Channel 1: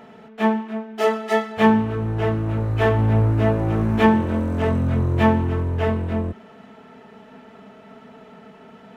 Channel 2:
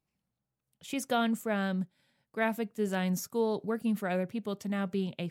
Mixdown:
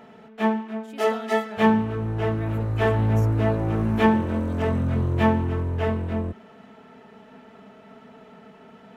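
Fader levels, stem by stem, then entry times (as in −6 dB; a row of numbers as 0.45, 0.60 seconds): −3.0, −11.0 decibels; 0.00, 0.00 seconds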